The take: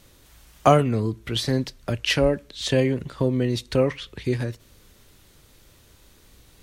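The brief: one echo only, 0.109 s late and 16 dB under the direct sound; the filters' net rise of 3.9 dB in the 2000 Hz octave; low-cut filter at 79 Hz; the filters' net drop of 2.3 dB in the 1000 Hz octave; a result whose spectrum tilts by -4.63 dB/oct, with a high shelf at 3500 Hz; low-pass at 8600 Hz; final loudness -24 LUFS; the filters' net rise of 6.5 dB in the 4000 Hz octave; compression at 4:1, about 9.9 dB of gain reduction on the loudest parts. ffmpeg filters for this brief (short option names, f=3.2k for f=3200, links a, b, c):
-af "highpass=79,lowpass=8.6k,equalizer=f=1k:t=o:g=-5,equalizer=f=2k:t=o:g=3,highshelf=f=3.5k:g=3.5,equalizer=f=4k:t=o:g=5.5,acompressor=threshold=-24dB:ratio=4,aecho=1:1:109:0.158,volume=4.5dB"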